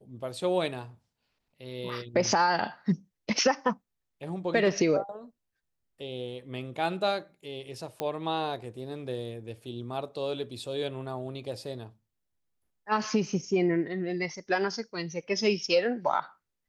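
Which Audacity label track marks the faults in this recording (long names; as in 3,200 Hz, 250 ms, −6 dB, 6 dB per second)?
8.000000	8.000000	click −16 dBFS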